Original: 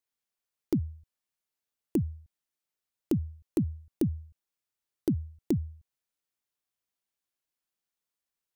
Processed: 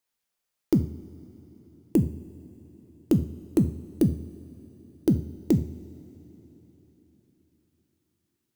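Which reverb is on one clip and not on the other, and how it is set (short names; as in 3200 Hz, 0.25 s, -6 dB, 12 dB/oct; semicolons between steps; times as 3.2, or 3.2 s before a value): two-slope reverb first 0.44 s, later 4.1 s, from -18 dB, DRR 6.5 dB; gain +5.5 dB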